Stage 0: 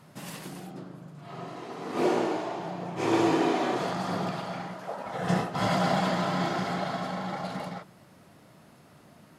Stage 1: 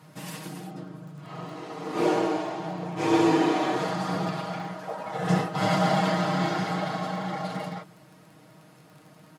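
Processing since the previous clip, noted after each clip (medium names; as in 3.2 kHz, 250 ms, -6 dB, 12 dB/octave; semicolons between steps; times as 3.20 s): high-pass 95 Hz; comb 6.4 ms, depth 72%; crackle 22 per s -44 dBFS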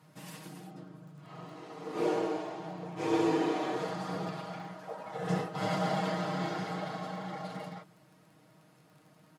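dynamic bell 460 Hz, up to +5 dB, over -41 dBFS, Q 3.3; trim -8.5 dB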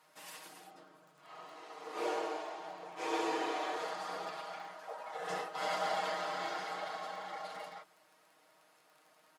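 high-pass 630 Hz 12 dB/octave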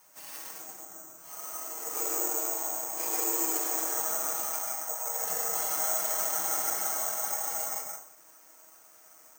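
compression, threshold -38 dBFS, peak gain reduction 8 dB; reverberation RT60 0.45 s, pre-delay 122 ms, DRR -1.5 dB; careless resampling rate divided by 6×, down filtered, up zero stuff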